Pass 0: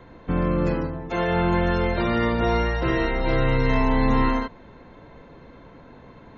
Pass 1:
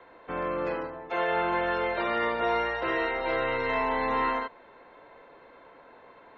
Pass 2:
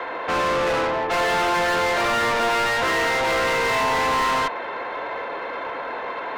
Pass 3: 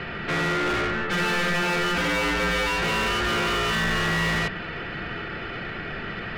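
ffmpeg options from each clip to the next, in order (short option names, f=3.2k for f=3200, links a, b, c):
-filter_complex "[0:a]acrossover=split=400 3900:gain=0.0794 1 0.1[a][b][c];[a][b][c]amix=inputs=3:normalize=0,volume=-1dB"
-filter_complex "[0:a]asplit=2[a][b];[b]highpass=f=720:p=1,volume=33dB,asoftclip=type=tanh:threshold=-15dB[c];[a][c]amix=inputs=2:normalize=0,lowpass=f=3.7k:p=1,volume=-6dB"
-af "aeval=exprs='val(0)*sin(2*PI*880*n/s)':c=same"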